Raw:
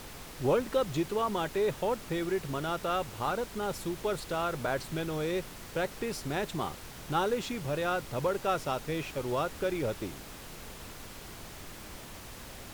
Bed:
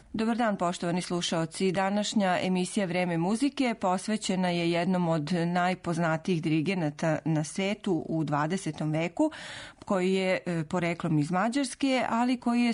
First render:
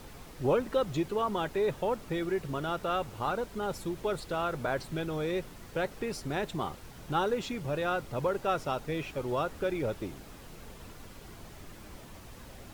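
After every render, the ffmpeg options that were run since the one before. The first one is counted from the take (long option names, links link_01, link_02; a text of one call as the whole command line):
ffmpeg -i in.wav -af "afftdn=noise_reduction=7:noise_floor=-46" out.wav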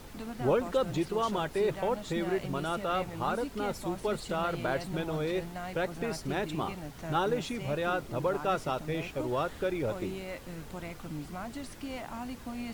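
ffmpeg -i in.wav -i bed.wav -filter_complex "[1:a]volume=-13.5dB[link_01];[0:a][link_01]amix=inputs=2:normalize=0" out.wav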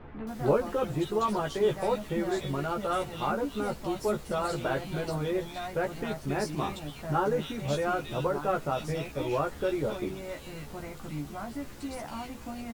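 ffmpeg -i in.wav -filter_complex "[0:a]asplit=2[link_01][link_02];[link_02]adelay=14,volume=-3dB[link_03];[link_01][link_03]amix=inputs=2:normalize=0,acrossover=split=2400[link_04][link_05];[link_05]adelay=270[link_06];[link_04][link_06]amix=inputs=2:normalize=0" out.wav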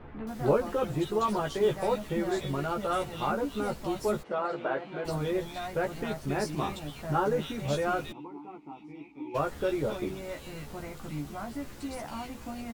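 ffmpeg -i in.wav -filter_complex "[0:a]asettb=1/sr,asplit=3[link_01][link_02][link_03];[link_01]atrim=end=1.244[link_04];[link_02]atrim=start=1.24:end=2.18,asetpts=PTS-STARTPTS,afade=type=in:duration=0.004:curve=qsin,afade=type=out:start_time=0.936:duration=0.004:curve=qsin,acrusher=bits=9:mode=log:mix=0:aa=0.000001[link_05];[link_03]atrim=start=2.176[link_06];[link_04][link_05]acrossfade=duration=0.004:curve1=hsin:curve2=qsin[link_07];[link_07][link_06]acrossfade=duration=0.004:curve1=qsin:curve2=hsin,asplit=3[link_08][link_09][link_10];[link_08]afade=type=out:start_time=4.22:duration=0.02[link_11];[link_09]highpass=290,lowpass=2200,afade=type=in:start_time=4.22:duration=0.02,afade=type=out:start_time=5.04:duration=0.02[link_12];[link_10]afade=type=in:start_time=5.04:duration=0.02[link_13];[link_11][link_12][link_13]amix=inputs=3:normalize=0,asplit=3[link_14][link_15][link_16];[link_14]afade=type=out:start_time=8.11:duration=0.02[link_17];[link_15]asplit=3[link_18][link_19][link_20];[link_18]bandpass=frequency=300:width_type=q:width=8,volume=0dB[link_21];[link_19]bandpass=frequency=870:width_type=q:width=8,volume=-6dB[link_22];[link_20]bandpass=frequency=2240:width_type=q:width=8,volume=-9dB[link_23];[link_21][link_22][link_23]amix=inputs=3:normalize=0,afade=type=in:start_time=8.11:duration=0.02,afade=type=out:start_time=9.34:duration=0.02[link_24];[link_16]afade=type=in:start_time=9.34:duration=0.02[link_25];[link_17][link_24][link_25]amix=inputs=3:normalize=0" out.wav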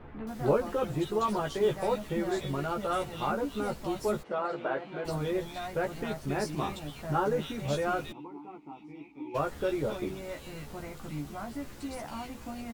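ffmpeg -i in.wav -af "volume=-1dB" out.wav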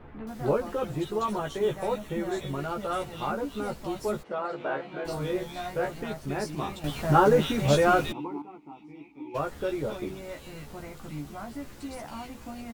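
ffmpeg -i in.wav -filter_complex "[0:a]asettb=1/sr,asplit=3[link_01][link_02][link_03];[link_01]atrim=end=1.244[link_04];[link_02]atrim=start=1.24:end=2.6,asetpts=PTS-STARTPTS,afade=type=in:duration=0.004:curve=qsin,afade=type=out:start_time=1.356:duration=0.004:curve=qsin,bandreject=frequency=4800:width=6.2[link_05];[link_03]atrim=start=2.596[link_06];[link_04][link_05]acrossfade=duration=0.004:curve1=hsin:curve2=qsin[link_07];[link_07][link_06]acrossfade=duration=0.004:curve1=qsin:curve2=hsin,asettb=1/sr,asplit=3[link_08][link_09][link_10];[link_08]atrim=end=4.574[link_11];[link_09]atrim=start=4.57:end=5.91,asetpts=PTS-STARTPTS,afade=type=in:duration=0.004:curve=qsin,afade=type=out:start_time=1.336:duration=0.004:curve=qsin,asplit=2[link_12][link_13];[link_13]adelay=28,volume=-3dB[link_14];[link_12][link_14]amix=inputs=2:normalize=0,atrim=end_sample=59094[link_15];[link_10]atrim=start=5.906[link_16];[link_11][link_15]acrossfade=duration=0.004:curve1=hsin:curve2=qsin[link_17];[link_17][link_16]acrossfade=duration=0.004:curve1=qsin:curve2=hsin,asplit=3[link_18][link_19][link_20];[link_18]atrim=end=6.842[link_21];[link_19]atrim=start=6.838:end=8.422,asetpts=PTS-STARTPTS,volume=9dB[link_22];[link_20]atrim=start=8.418[link_23];[link_21][link_22]acrossfade=duration=0.004:curve1=hsin:curve2=hsin[link_24];[link_24][link_23]acrossfade=duration=0.004:curve1=hsin:curve2=hsin" out.wav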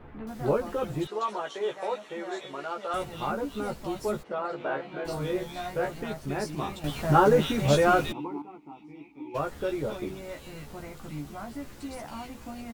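ffmpeg -i in.wav -filter_complex "[0:a]asettb=1/sr,asplit=3[link_01][link_02][link_03];[link_01]atrim=end=1.074[link_04];[link_02]atrim=start=1.07:end=2.94,asetpts=PTS-STARTPTS,afade=type=in:duration=0.004:curve=qsin,afade=type=out:start_time=1.866:duration=0.004:curve=qsin,highpass=460,lowpass=6400[link_05];[link_03]atrim=start=2.936[link_06];[link_04][link_05]acrossfade=duration=0.004:curve1=hsin:curve2=qsin[link_07];[link_07][link_06]acrossfade=duration=0.004:curve1=qsin:curve2=hsin" out.wav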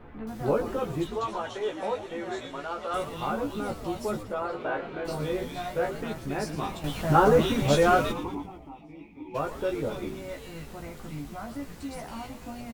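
ffmpeg -i in.wav -filter_complex "[0:a]asplit=2[link_01][link_02];[link_02]adelay=18,volume=-10.5dB[link_03];[link_01][link_03]amix=inputs=2:normalize=0,asplit=7[link_04][link_05][link_06][link_07][link_08][link_09][link_10];[link_05]adelay=114,afreqshift=-110,volume=-12dB[link_11];[link_06]adelay=228,afreqshift=-220,volume=-17.4dB[link_12];[link_07]adelay=342,afreqshift=-330,volume=-22.7dB[link_13];[link_08]adelay=456,afreqshift=-440,volume=-28.1dB[link_14];[link_09]adelay=570,afreqshift=-550,volume=-33.4dB[link_15];[link_10]adelay=684,afreqshift=-660,volume=-38.8dB[link_16];[link_04][link_11][link_12][link_13][link_14][link_15][link_16]amix=inputs=7:normalize=0" out.wav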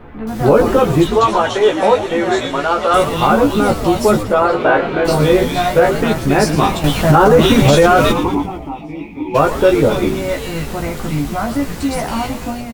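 ffmpeg -i in.wav -af "dynaudnorm=framelen=100:gausssize=7:maxgain=8dB,alimiter=level_in=10.5dB:limit=-1dB:release=50:level=0:latency=1" out.wav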